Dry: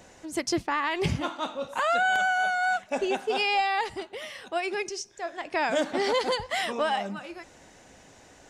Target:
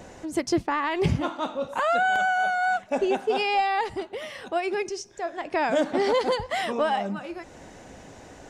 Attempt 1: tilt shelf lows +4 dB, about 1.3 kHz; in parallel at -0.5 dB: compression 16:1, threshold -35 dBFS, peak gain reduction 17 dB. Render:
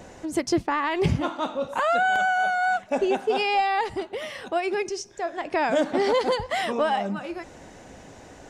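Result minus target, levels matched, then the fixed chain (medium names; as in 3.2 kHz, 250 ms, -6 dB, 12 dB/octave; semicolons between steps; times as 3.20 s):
compression: peak gain reduction -8 dB
tilt shelf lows +4 dB, about 1.3 kHz; in parallel at -0.5 dB: compression 16:1, threshold -43.5 dBFS, peak gain reduction 25 dB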